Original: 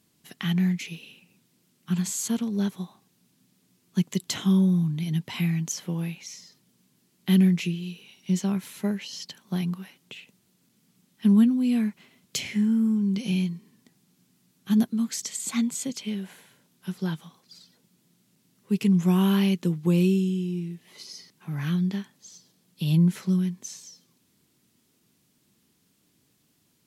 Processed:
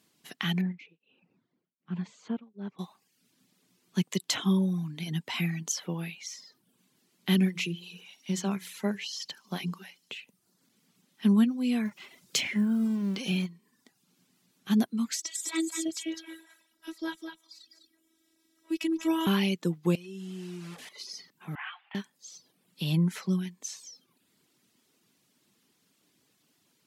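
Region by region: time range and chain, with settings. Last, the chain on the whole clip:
0.61–2.79 tape spacing loss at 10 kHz 42 dB + beating tremolo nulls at 1.3 Hz
7.33–10.14 notches 60/120/180/240/300/360/420 Hz + thin delay 74 ms, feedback 82%, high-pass 4400 Hz, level -17.5 dB
11.85–13.46 G.711 law mismatch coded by mu + notches 60/120 Hz
15.15–19.27 robotiser 325 Hz + echo 0.203 s -6 dB
19.95–20.89 delta modulation 64 kbps, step -39.5 dBFS + compressor, threshold -31 dBFS
21.55–21.95 CVSD 32 kbps + Chebyshev band-pass 740–3000 Hz, order 4
whole clip: reverb removal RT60 0.65 s; HPF 370 Hz 6 dB/oct; high shelf 7600 Hz -6.5 dB; gain +3 dB

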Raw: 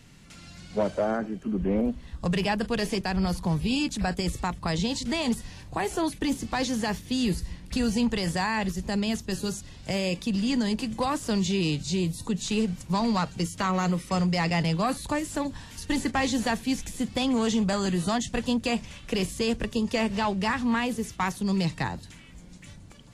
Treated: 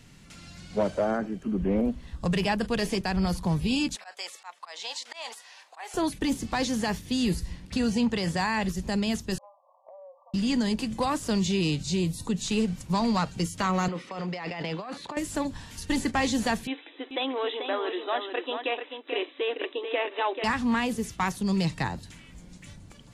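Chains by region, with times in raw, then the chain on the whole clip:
3.96–5.94 HPF 680 Hz 24 dB/oct + high shelf 8300 Hz -10.5 dB + auto swell 0.167 s
7.65–8.39 HPF 71 Hz + high shelf 10000 Hz -10.5 dB
9.38–10.34 brick-wall FIR band-pass 520–1200 Hz + compressor, threshold -46 dBFS
13.88–15.17 BPF 320–3400 Hz + negative-ratio compressor -34 dBFS
16.67–20.44 expander -38 dBFS + brick-wall FIR band-pass 270–4000 Hz + echo 0.437 s -7 dB
whole clip: dry

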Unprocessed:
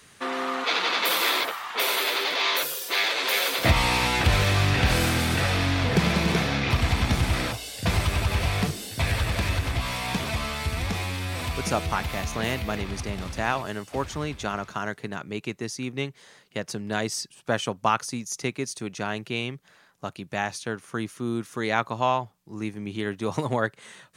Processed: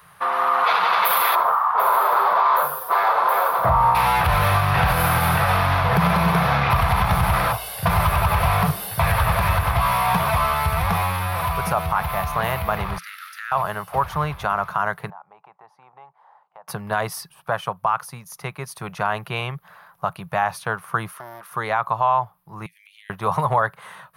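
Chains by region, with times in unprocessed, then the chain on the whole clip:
1.35–3.95 resonant high shelf 1700 Hz -12 dB, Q 1.5 + doubler 40 ms -8 dB
12.98–13.52 rippled Chebyshev high-pass 1300 Hz, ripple 3 dB + compressor, threshold -34 dBFS + notch 7800 Hz, Q 20
15.1–16.68 band-pass 830 Hz, Q 5.5 + compressor 2.5:1, threshold -53 dBFS
21.11–21.51 HPF 430 Hz + compressor 5:1, threshold -38 dBFS + Doppler distortion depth 0.46 ms
22.66–23.1 steep high-pass 2000 Hz 72 dB/oct + high shelf 11000 Hz -5 dB + compressor 3:1, threshold -51 dBFS
whole clip: EQ curve 110 Hz 0 dB, 170 Hz +5 dB, 250 Hz -17 dB, 680 Hz +6 dB, 1100 Hz +12 dB, 1900 Hz 0 dB, 5000 Hz -8 dB, 7500 Hz -16 dB, 11000 Hz +8 dB; AGC gain up to 5 dB; maximiser +8.5 dB; gain -8 dB

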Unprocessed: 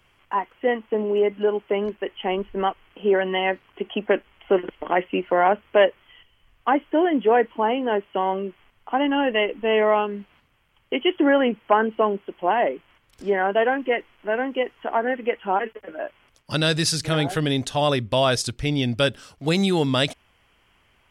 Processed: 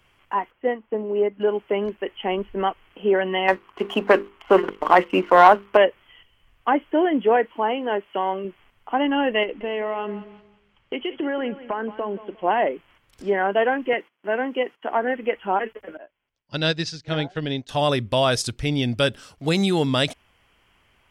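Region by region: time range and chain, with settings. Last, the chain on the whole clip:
0.51–1.4 bell 7500 Hz -14 dB 2 oct + upward expander, over -30 dBFS
3.48–5.77 bell 1100 Hz +10 dB 0.83 oct + notches 50/100/150/200/250/300/350/400/450/500 Hz + sample leveller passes 1
7.36–8.45 low shelf 270 Hz -7 dB + mismatched tape noise reduction encoder only
9.43–12.44 LPF 5800 Hz + compressor 5:1, threshold -23 dBFS + feedback echo 0.177 s, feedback 30%, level -15 dB
13.93–14.93 HPF 150 Hz 24 dB/oct + gate -54 dBFS, range -17 dB
15.97–17.69 LPF 5900 Hz 24 dB/oct + notch 1200 Hz, Q 8.3 + upward expander 2.5:1, over -33 dBFS
whole clip: dry

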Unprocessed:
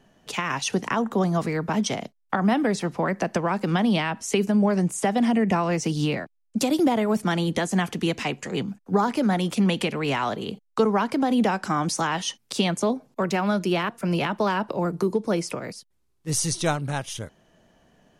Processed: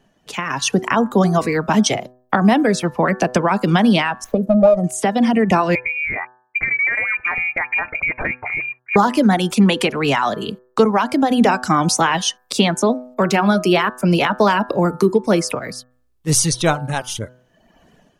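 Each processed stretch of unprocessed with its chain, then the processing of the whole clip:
4.24–4.84 EQ curve 240 Hz 0 dB, 400 Hz -8 dB, 600 Hz +14 dB, 1600 Hz -29 dB, 7300 Hz -14 dB, 11000 Hz -9 dB + running maximum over 5 samples
5.75–8.96 HPF 180 Hz 6 dB/oct + inverted band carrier 2600 Hz + compressor 3:1, threshold -28 dBFS
whole clip: reverb removal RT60 0.92 s; de-hum 125.5 Hz, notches 14; AGC gain up to 11 dB

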